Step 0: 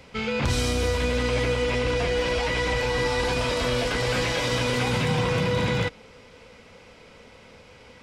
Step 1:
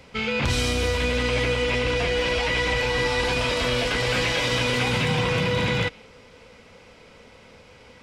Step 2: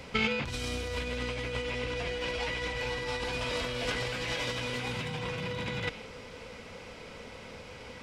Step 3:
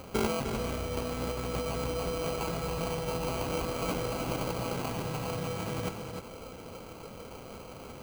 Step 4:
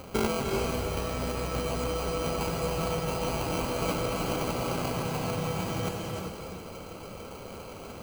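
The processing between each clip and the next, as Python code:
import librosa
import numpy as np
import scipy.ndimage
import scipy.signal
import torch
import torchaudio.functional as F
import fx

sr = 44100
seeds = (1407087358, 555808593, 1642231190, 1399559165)

y1 = fx.dynamic_eq(x, sr, hz=2700.0, q=1.1, threshold_db=-44.0, ratio=4.0, max_db=5)
y2 = fx.over_compress(y1, sr, threshold_db=-28.0, ratio=-0.5)
y2 = y2 * 10.0 ** (-3.5 / 20.0)
y3 = fx.sample_hold(y2, sr, seeds[0], rate_hz=1800.0, jitter_pct=0)
y3 = y3 + 10.0 ** (-7.0 / 20.0) * np.pad(y3, (int(303 * sr / 1000.0), 0))[:len(y3)]
y4 = fx.rev_gated(y3, sr, seeds[1], gate_ms=430, shape='rising', drr_db=3.0)
y4 = y4 * 10.0 ** (1.5 / 20.0)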